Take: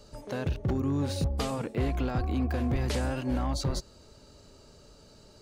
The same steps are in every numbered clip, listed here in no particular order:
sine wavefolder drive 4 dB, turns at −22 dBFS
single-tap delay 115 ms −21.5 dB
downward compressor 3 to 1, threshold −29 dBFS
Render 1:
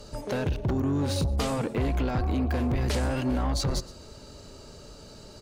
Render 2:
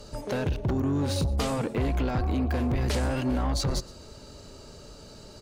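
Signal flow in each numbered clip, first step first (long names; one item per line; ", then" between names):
single-tap delay, then downward compressor, then sine wavefolder
downward compressor, then single-tap delay, then sine wavefolder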